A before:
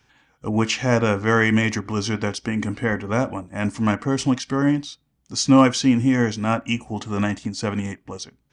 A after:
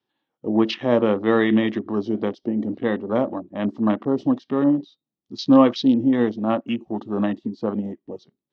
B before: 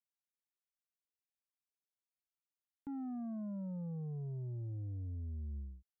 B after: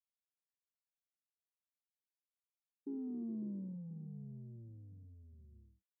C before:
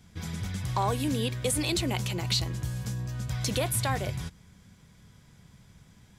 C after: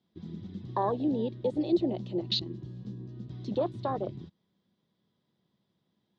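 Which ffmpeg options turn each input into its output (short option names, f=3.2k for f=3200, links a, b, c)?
-af "afwtdn=0.0355,highpass=200,equalizer=f=210:t=q:w=4:g=4,equalizer=f=350:t=q:w=4:g=9,equalizer=f=580:t=q:w=4:g=4,equalizer=f=1.5k:t=q:w=4:g=-8,equalizer=f=2.3k:t=q:w=4:g=-10,equalizer=f=3.8k:t=q:w=4:g=5,lowpass=f=4.4k:w=0.5412,lowpass=f=4.4k:w=1.3066,volume=-1dB"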